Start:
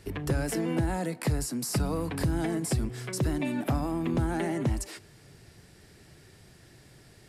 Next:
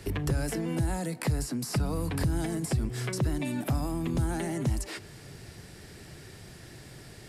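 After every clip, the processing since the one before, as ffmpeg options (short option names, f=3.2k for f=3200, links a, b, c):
-filter_complex "[0:a]acrossover=split=130|4400[a][b][c];[a]acompressor=threshold=-34dB:ratio=4[d];[b]acompressor=threshold=-40dB:ratio=4[e];[c]acompressor=threshold=-48dB:ratio=4[f];[d][e][f]amix=inputs=3:normalize=0,volume=7dB"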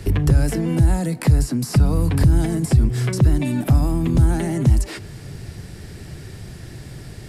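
-af "lowshelf=f=210:g=10.5,volume=5.5dB"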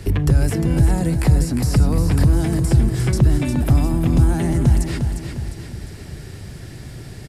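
-af "aecho=1:1:354|708|1062|1416|1770|2124:0.447|0.21|0.0987|0.0464|0.0218|0.0102"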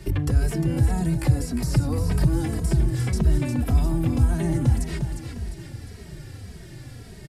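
-filter_complex "[0:a]asplit=2[a][b];[b]adelay=2.8,afreqshift=-1.8[c];[a][c]amix=inputs=2:normalize=1,volume=-2.5dB"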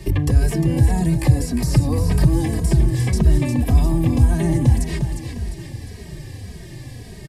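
-af "asuperstop=centerf=1400:order=12:qfactor=5.1,volume=5dB"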